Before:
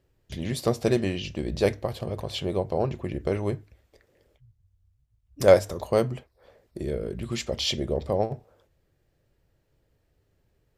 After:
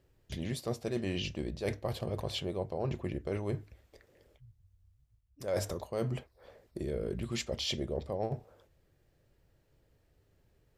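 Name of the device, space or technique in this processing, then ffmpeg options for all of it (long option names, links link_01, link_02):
compression on the reversed sound: -af "areverse,acompressor=threshold=-31dB:ratio=8,areverse"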